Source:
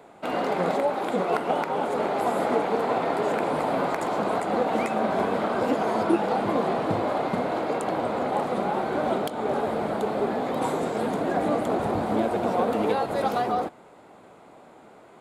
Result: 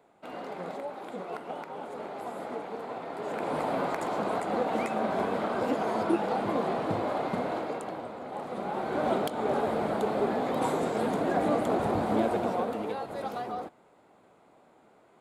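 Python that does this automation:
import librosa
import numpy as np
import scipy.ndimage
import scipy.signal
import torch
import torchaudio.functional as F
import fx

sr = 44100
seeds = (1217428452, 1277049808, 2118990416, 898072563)

y = fx.gain(x, sr, db=fx.line((3.1, -13.0), (3.55, -4.5), (7.52, -4.5), (8.19, -14.0), (9.08, -2.0), (12.32, -2.0), (12.87, -10.0)))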